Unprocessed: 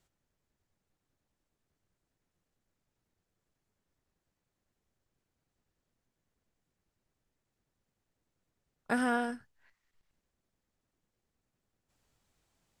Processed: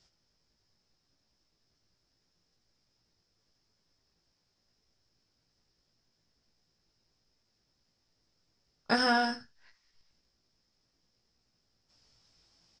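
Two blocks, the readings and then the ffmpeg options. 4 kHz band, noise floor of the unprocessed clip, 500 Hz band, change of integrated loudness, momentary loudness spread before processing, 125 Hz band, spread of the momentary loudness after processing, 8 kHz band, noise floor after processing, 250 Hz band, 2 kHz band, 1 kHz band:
+16.5 dB, under -85 dBFS, +3.0 dB, +4.0 dB, 11 LU, +3.5 dB, 11 LU, +1.0 dB, -78 dBFS, 0.0 dB, +4.5 dB, +5.0 dB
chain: -filter_complex "[0:a]lowpass=f=5.2k:t=q:w=10,asplit=2[a][b];[b]aecho=0:1:18|78:0.596|0.133[c];[a][c]amix=inputs=2:normalize=0,volume=2.5dB"

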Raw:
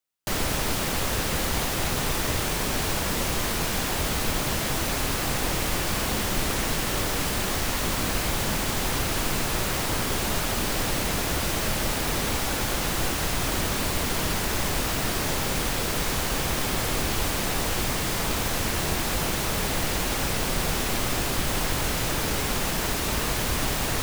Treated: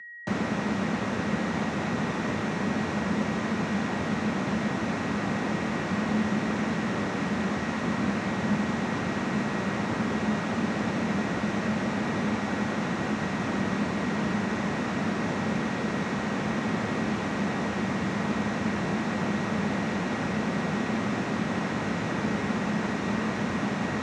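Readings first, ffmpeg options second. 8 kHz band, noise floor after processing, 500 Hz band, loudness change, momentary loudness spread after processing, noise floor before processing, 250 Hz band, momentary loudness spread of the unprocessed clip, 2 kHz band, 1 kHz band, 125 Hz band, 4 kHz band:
-17.5 dB, -31 dBFS, -1.0 dB, -3.0 dB, 1 LU, -28 dBFS, +5.5 dB, 0 LU, -2.0 dB, -1.5 dB, -1.5 dB, -11.5 dB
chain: -filter_complex "[0:a]aeval=exprs='val(0)+0.0112*sin(2*PI*1900*n/s)':c=same,acrossover=split=140|2800[a][b][c];[a]alimiter=level_in=5.5dB:limit=-24dB:level=0:latency=1:release=447,volume=-5.5dB[d];[d][b][c]amix=inputs=3:normalize=0,bass=f=250:g=5,treble=f=4k:g=7,acrossover=split=2700[e][f];[f]acompressor=threshold=-40dB:ratio=4:attack=1:release=60[g];[e][g]amix=inputs=2:normalize=0,highpass=f=100:w=0.5412,highpass=f=100:w=1.3066,equalizer=f=130:t=q:w=4:g=-5,equalizer=f=210:t=q:w=4:g=10,equalizer=f=3.1k:t=q:w=4:g=-5,equalizer=f=4.7k:t=q:w=4:g=-6,lowpass=f=6.2k:w=0.5412,lowpass=f=6.2k:w=1.3066,volume=-1.5dB"

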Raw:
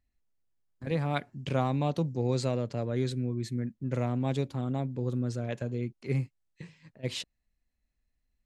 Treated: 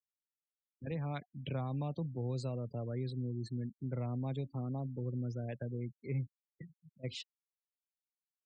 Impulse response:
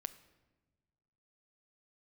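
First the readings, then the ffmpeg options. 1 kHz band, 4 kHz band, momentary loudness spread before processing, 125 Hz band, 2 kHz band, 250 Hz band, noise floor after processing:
-11.5 dB, -9.5 dB, 11 LU, -6.0 dB, -11.5 dB, -8.5 dB, under -85 dBFS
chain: -filter_complex "[0:a]afftfilt=real='re*gte(hypot(re,im),0.0126)':imag='im*gte(hypot(re,im),0.0126)':win_size=1024:overlap=0.75,acrossover=split=150[a][b];[b]acompressor=threshold=-36dB:ratio=3[c];[a][c]amix=inputs=2:normalize=0,volume=-4.5dB"

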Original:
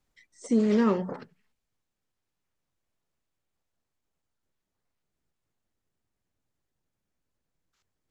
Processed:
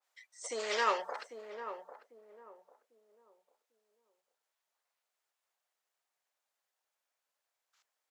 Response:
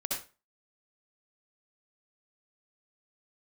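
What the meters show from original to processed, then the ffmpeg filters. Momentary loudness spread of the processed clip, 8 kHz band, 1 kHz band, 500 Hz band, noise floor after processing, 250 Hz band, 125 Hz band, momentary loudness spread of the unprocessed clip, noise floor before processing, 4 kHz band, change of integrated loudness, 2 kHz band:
19 LU, n/a, +3.0 dB, -8.0 dB, under -85 dBFS, -29.5 dB, under -35 dB, 16 LU, -84 dBFS, +7.0 dB, -11.5 dB, +4.5 dB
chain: -filter_complex "[0:a]highpass=f=620:w=0.5412,highpass=f=620:w=1.3066,asplit=2[a][b];[b]adelay=797,lowpass=f=800:p=1,volume=-8dB,asplit=2[c][d];[d]adelay=797,lowpass=f=800:p=1,volume=0.33,asplit=2[e][f];[f]adelay=797,lowpass=f=800:p=1,volume=0.33,asplit=2[g][h];[h]adelay=797,lowpass=f=800:p=1,volume=0.33[i];[a][c][e][g][i]amix=inputs=5:normalize=0,adynamicequalizer=threshold=0.00355:dfrequency=1900:dqfactor=0.7:tfrequency=1900:tqfactor=0.7:attack=5:release=100:ratio=0.375:range=3:mode=boostabove:tftype=highshelf,volume=2dB"

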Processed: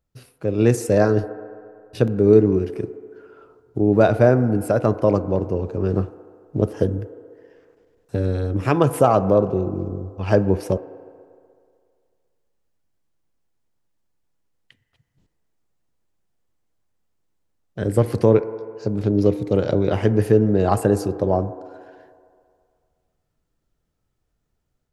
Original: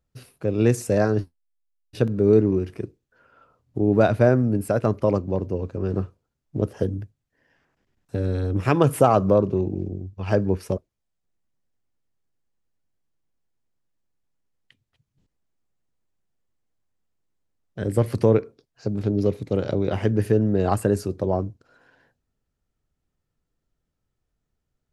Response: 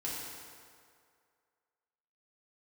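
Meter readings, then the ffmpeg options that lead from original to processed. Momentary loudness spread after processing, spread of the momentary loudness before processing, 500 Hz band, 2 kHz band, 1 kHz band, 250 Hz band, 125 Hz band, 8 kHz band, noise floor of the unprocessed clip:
14 LU, 14 LU, +3.5 dB, +2.0 dB, +2.5 dB, +2.5 dB, +2.0 dB, +2.0 dB, -79 dBFS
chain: -filter_complex "[0:a]dynaudnorm=f=350:g=3:m=5dB,asplit=2[a][b];[b]highpass=520,lowpass=5.2k[c];[1:a]atrim=start_sample=2205,lowpass=1.7k,lowshelf=f=360:g=10.5[d];[c][d]afir=irnorm=-1:irlink=0,volume=-12.5dB[e];[a][e]amix=inputs=2:normalize=0,volume=-1dB"

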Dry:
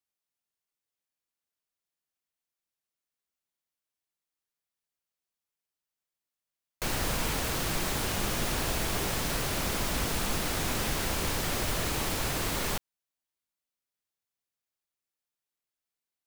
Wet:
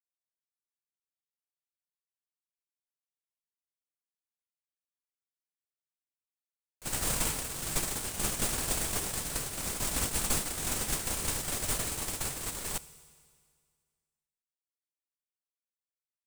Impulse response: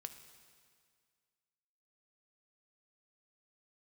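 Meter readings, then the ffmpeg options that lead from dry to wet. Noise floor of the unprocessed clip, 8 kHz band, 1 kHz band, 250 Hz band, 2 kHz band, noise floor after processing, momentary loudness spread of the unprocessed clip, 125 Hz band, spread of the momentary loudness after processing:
under -85 dBFS, +3.0 dB, -6.0 dB, -6.0 dB, -6.0 dB, under -85 dBFS, 1 LU, -6.0 dB, 5 LU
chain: -filter_complex "[0:a]agate=range=-23dB:threshold=-28dB:ratio=16:detection=peak,equalizer=f=8.4k:t=o:w=0.61:g=9,asplit=2[a][b];[1:a]atrim=start_sample=2205,highshelf=f=4.7k:g=11[c];[b][c]afir=irnorm=-1:irlink=0,volume=-1dB[d];[a][d]amix=inputs=2:normalize=0,volume=-2.5dB"

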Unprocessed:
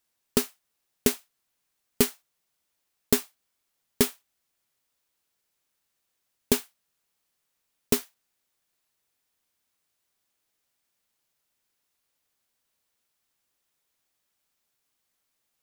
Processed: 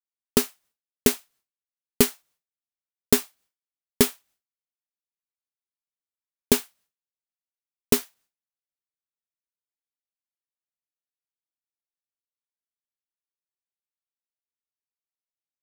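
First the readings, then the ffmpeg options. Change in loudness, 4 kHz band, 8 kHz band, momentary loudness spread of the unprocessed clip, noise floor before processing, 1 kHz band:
+3.5 dB, +3.5 dB, +3.5 dB, 2 LU, -79 dBFS, +3.5 dB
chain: -af "agate=range=-33dB:threshold=-56dB:ratio=3:detection=peak,volume=3.5dB"

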